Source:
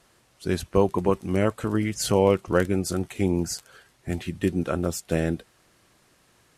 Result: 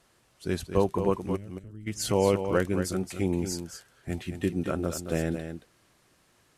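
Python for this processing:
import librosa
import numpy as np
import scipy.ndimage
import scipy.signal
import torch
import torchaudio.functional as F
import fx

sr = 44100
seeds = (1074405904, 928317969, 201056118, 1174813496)

p1 = fx.tone_stack(x, sr, knobs='10-0-1', at=(1.35, 1.86), fade=0.02)
p2 = p1 + fx.echo_single(p1, sr, ms=224, db=-8.5, dry=0)
y = p2 * 10.0 ** (-4.0 / 20.0)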